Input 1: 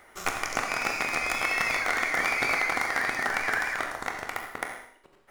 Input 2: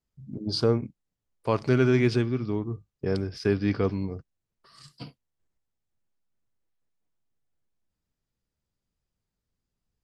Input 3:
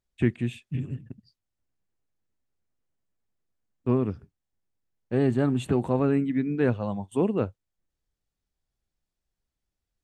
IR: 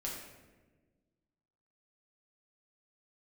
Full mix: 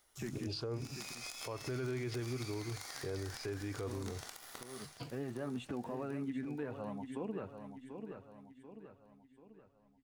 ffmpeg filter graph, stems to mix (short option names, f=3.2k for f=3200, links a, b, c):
-filter_complex "[0:a]alimiter=limit=-22dB:level=0:latency=1:release=454,aexciter=amount=9:drive=6.6:freq=3.2k,acompressor=threshold=-25dB:ratio=2,volume=-10dB,afade=t=in:st=0.74:d=0.44:silence=0.266073,asplit=2[a][b];[b]volume=-15dB[c];[1:a]equalizer=f=200:w=3:g=-15,volume=0dB[d];[2:a]lowshelf=f=330:g=-9.5,alimiter=limit=-22.5dB:level=0:latency=1:release=17,flanger=delay=3.4:depth=4.8:regen=50:speed=0.7:shape=triangular,volume=-2dB,asplit=2[e][f];[f]volume=-10dB[g];[c][g]amix=inputs=2:normalize=0,aecho=0:1:738|1476|2214|2952|3690|4428:1|0.46|0.212|0.0973|0.0448|0.0206[h];[a][d][e][h]amix=inputs=4:normalize=0,highshelf=f=4.3k:g=-10,alimiter=level_in=7dB:limit=-24dB:level=0:latency=1:release=180,volume=-7dB"